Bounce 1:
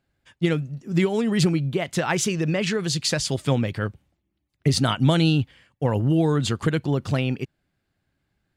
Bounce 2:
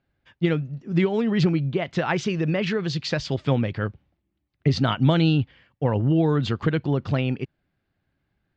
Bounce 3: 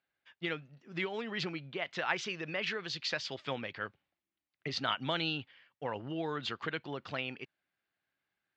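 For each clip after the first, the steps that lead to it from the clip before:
Bessel low-pass filter 3,400 Hz, order 6
resonant band-pass 2,700 Hz, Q 0.51; level −4 dB

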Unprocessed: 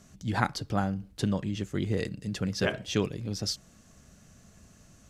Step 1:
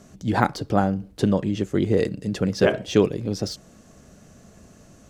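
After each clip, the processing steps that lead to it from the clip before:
de-essing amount 75%
parametric band 440 Hz +9 dB 2.3 octaves
level +3 dB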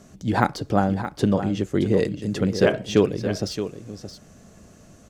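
single-tap delay 621 ms −10.5 dB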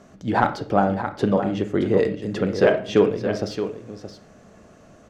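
mid-hump overdrive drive 12 dB, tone 1,200 Hz, clips at −1 dBFS
on a send at −9 dB: convolution reverb RT60 0.40 s, pre-delay 26 ms

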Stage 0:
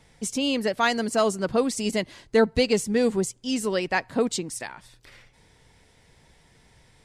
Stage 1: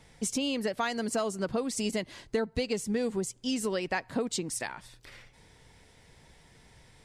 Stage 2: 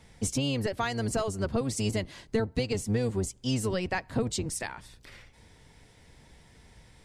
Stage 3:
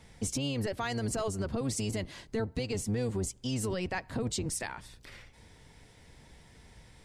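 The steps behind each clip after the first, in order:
downward compressor 6 to 1, threshold −27 dBFS, peak gain reduction 12.5 dB
sub-octave generator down 1 octave, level +1 dB
brickwall limiter −23.5 dBFS, peak gain reduction 8 dB

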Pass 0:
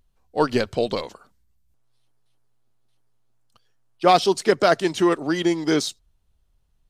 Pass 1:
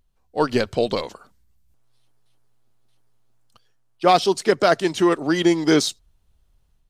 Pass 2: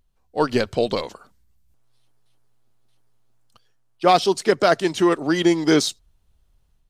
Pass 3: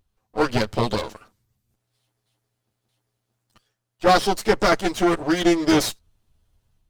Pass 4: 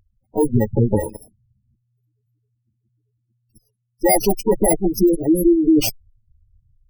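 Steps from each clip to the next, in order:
automatic gain control gain up to 6 dB; level −1.5 dB
no processing that can be heard
lower of the sound and its delayed copy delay 9.3 ms
samples in bit-reversed order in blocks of 32 samples; harmonic generator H 5 −8 dB, 8 −13 dB, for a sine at −4.5 dBFS; gate on every frequency bin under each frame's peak −10 dB strong

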